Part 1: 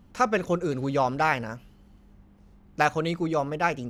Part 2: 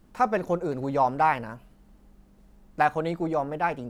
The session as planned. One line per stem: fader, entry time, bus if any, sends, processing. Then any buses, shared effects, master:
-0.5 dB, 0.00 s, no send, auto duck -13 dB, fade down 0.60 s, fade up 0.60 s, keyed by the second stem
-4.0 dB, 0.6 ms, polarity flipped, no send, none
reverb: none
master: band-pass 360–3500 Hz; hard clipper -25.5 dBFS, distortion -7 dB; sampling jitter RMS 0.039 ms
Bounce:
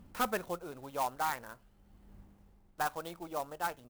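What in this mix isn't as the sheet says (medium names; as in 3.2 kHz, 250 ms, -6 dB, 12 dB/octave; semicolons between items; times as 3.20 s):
stem 2 -4.0 dB -> -13.0 dB; master: missing band-pass 360–3500 Hz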